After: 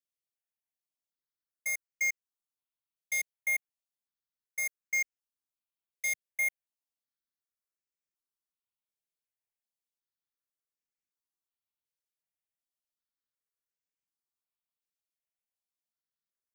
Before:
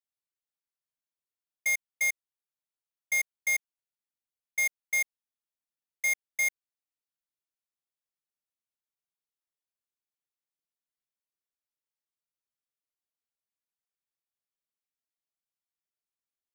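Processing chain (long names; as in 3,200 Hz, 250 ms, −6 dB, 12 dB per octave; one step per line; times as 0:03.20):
step-sequenced phaser 2.7 Hz 270–3,700 Hz
level −2 dB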